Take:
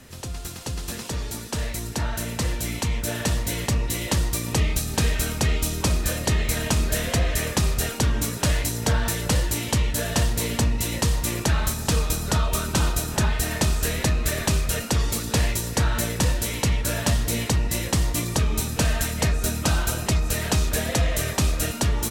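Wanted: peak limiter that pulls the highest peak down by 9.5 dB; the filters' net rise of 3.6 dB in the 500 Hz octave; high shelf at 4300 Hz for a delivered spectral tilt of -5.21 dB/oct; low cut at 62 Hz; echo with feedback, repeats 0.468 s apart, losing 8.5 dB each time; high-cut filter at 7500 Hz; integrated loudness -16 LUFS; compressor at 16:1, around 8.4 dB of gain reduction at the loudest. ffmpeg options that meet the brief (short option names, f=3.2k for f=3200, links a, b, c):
-af "highpass=62,lowpass=7.5k,equalizer=f=500:t=o:g=4.5,highshelf=f=4.3k:g=-8,acompressor=threshold=-26dB:ratio=16,alimiter=limit=-22dB:level=0:latency=1,aecho=1:1:468|936|1404|1872:0.376|0.143|0.0543|0.0206,volume=16dB"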